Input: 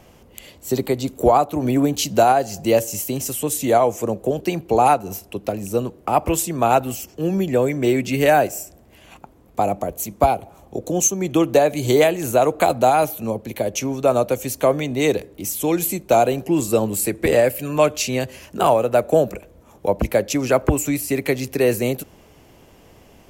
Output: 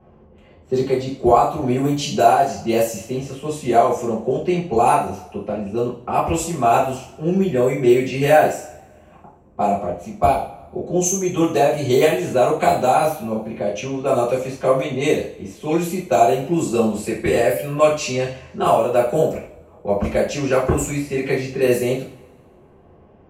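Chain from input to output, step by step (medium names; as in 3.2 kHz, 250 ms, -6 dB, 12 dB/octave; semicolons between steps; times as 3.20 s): level-controlled noise filter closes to 1.1 kHz, open at -13 dBFS; two-slope reverb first 0.43 s, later 1.7 s, from -24 dB, DRR -9.5 dB; trim -9.5 dB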